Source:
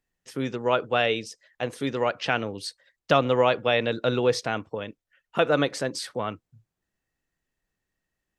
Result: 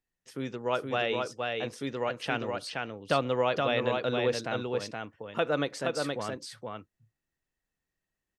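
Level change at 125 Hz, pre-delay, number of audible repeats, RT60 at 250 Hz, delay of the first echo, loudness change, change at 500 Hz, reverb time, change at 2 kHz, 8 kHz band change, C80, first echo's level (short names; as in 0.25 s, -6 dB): -5.0 dB, none, 1, none, 0.472 s, -5.5 dB, -5.0 dB, none, -5.0 dB, -5.0 dB, none, -3.5 dB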